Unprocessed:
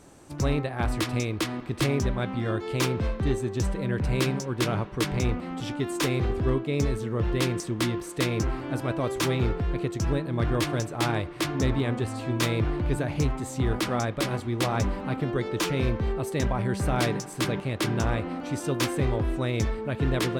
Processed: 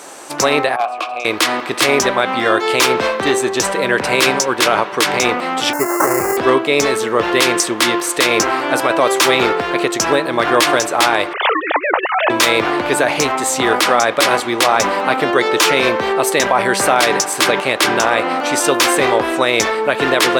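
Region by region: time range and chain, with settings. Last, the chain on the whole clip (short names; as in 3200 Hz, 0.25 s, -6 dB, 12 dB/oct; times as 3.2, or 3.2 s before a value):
0.76–1.25 vowel filter a + tone controls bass +2 dB, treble +3 dB + hard clip -30.5 dBFS
5.73–6.37 sample-rate reducer 2400 Hz + Butterworth band-stop 3500 Hz, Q 0.68 + notch comb 240 Hz
11.33–12.3 sine-wave speech + HPF 530 Hz + negative-ratio compressor -34 dBFS, ratio -0.5
whole clip: HPF 600 Hz 12 dB/oct; maximiser +23 dB; gain -1 dB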